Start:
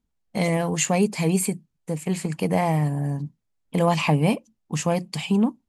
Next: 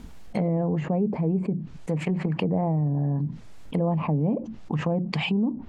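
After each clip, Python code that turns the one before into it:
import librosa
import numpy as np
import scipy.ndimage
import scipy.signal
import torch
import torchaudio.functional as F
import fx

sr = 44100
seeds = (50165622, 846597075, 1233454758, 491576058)

y = fx.env_lowpass_down(x, sr, base_hz=530.0, full_db=-20.0)
y = fx.high_shelf(y, sr, hz=5500.0, db=-9.0)
y = fx.env_flatten(y, sr, amount_pct=70)
y = y * 10.0 ** (-5.0 / 20.0)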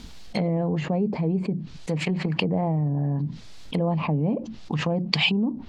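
y = fx.peak_eq(x, sr, hz=4300.0, db=14.0, octaves=1.5)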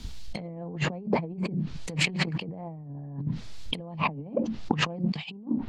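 y = fx.over_compress(x, sr, threshold_db=-29.0, ratio=-0.5)
y = fx.band_widen(y, sr, depth_pct=70)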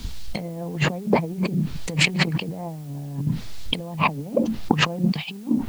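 y = fx.quant_dither(x, sr, seeds[0], bits=10, dither='triangular')
y = y * 10.0 ** (6.5 / 20.0)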